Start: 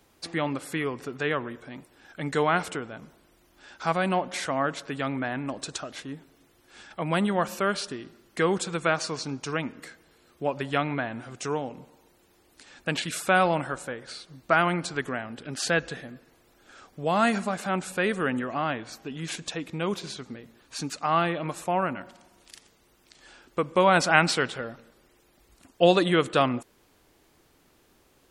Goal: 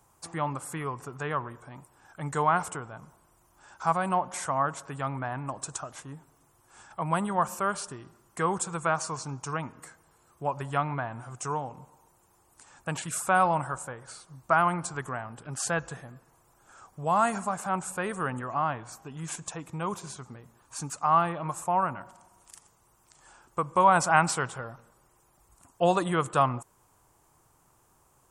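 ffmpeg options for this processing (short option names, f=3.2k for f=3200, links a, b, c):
-af "equalizer=f=125:t=o:w=1:g=7,equalizer=f=250:t=o:w=1:g=-7,equalizer=f=500:t=o:w=1:g=-4,equalizer=f=1k:t=o:w=1:g=10,equalizer=f=2k:t=o:w=1:g=-6,equalizer=f=4k:t=o:w=1:g=-11,equalizer=f=8k:t=o:w=1:g=9,volume=-3dB"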